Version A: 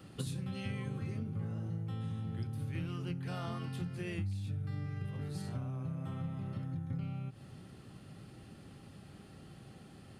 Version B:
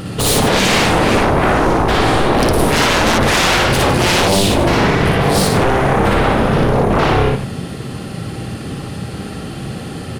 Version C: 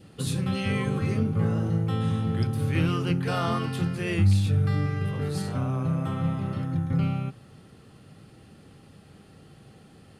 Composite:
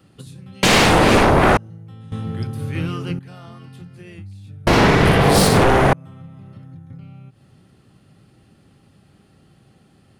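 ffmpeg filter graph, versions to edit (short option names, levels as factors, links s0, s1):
-filter_complex "[1:a]asplit=2[s0][s1];[0:a]asplit=4[s2][s3][s4][s5];[s2]atrim=end=0.632[s6];[s0]atrim=start=0.628:end=1.572[s7];[s3]atrim=start=1.568:end=2.122[s8];[2:a]atrim=start=2.118:end=3.192[s9];[s4]atrim=start=3.188:end=4.672[s10];[s1]atrim=start=4.668:end=5.932[s11];[s5]atrim=start=5.928[s12];[s6][s7]acrossfade=d=0.004:c1=hsin:c2=hsin[s13];[s13][s8]acrossfade=d=0.004:c1=hsin:c2=hsin[s14];[s14][s9]acrossfade=d=0.004:c1=hsin:c2=hsin[s15];[s15][s10]acrossfade=d=0.004:c1=hsin:c2=hsin[s16];[s16][s11]acrossfade=d=0.004:c1=hsin:c2=hsin[s17];[s17][s12]acrossfade=d=0.004:c1=hsin:c2=hsin"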